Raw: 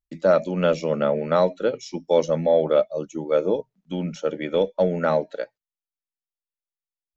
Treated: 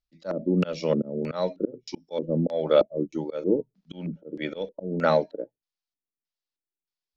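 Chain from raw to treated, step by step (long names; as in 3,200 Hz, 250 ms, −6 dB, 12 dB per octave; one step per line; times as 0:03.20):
volume swells 266 ms
auto-filter low-pass square 1.6 Hz 330–4,800 Hz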